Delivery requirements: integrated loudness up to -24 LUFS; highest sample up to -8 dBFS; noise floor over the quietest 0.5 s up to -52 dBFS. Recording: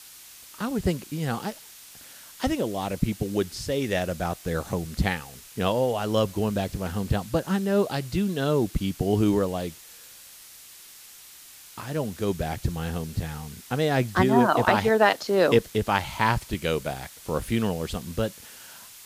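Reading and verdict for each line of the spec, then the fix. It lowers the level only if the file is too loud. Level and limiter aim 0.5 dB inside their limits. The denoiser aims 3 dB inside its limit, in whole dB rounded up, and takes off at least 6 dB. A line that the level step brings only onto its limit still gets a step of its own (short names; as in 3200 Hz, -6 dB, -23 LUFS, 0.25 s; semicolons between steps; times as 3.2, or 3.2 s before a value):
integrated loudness -26.0 LUFS: OK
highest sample -6.0 dBFS: fail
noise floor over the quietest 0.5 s -48 dBFS: fail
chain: denoiser 7 dB, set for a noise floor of -48 dBFS; limiter -8.5 dBFS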